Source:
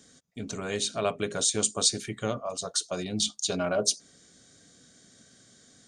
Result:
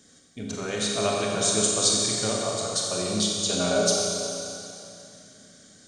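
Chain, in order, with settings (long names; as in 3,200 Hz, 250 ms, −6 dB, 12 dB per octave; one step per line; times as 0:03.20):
four-comb reverb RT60 2.8 s, combs from 30 ms, DRR −2.5 dB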